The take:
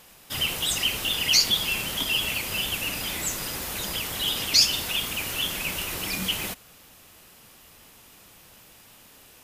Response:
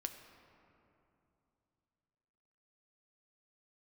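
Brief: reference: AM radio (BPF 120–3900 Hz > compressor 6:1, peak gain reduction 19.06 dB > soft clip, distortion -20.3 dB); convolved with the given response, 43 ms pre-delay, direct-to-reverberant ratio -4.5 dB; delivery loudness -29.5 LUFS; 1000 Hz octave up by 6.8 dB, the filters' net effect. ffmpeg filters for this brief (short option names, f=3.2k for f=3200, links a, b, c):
-filter_complex "[0:a]equalizer=f=1k:t=o:g=8.5,asplit=2[a][b];[1:a]atrim=start_sample=2205,adelay=43[c];[b][c]afir=irnorm=-1:irlink=0,volume=6.5dB[d];[a][d]amix=inputs=2:normalize=0,highpass=120,lowpass=3.9k,acompressor=threshold=-34dB:ratio=6,asoftclip=threshold=-28dB,volume=7dB"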